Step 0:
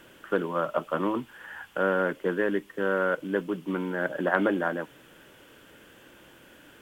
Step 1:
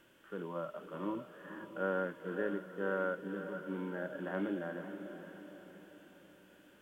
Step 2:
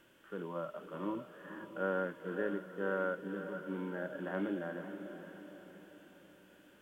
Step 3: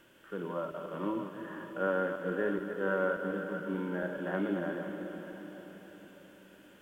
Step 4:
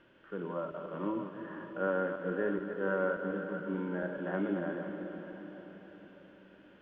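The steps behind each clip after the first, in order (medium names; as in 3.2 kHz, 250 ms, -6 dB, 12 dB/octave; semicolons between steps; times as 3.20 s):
harmonic-percussive split percussive -16 dB; echo that smears into a reverb 517 ms, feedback 48%, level -9 dB; trim -8 dB
no audible change
backward echo that repeats 144 ms, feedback 48%, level -7 dB; trim +3.5 dB
distance through air 260 m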